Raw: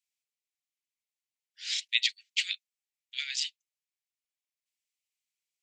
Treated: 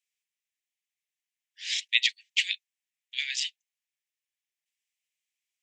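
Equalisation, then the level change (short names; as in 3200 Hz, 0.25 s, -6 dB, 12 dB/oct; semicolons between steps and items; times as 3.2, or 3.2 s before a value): elliptic high-pass 1700 Hz; bell 4400 Hz -6.5 dB 0.45 oct; high shelf 7200 Hz -8 dB; +6.5 dB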